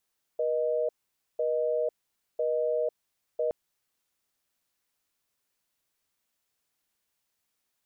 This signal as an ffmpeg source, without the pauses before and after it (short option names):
-f lavfi -i "aevalsrc='0.0422*(sin(2*PI*480*t)+sin(2*PI*620*t))*clip(min(mod(t,1),0.5-mod(t,1))/0.005,0,1)':d=3.12:s=44100"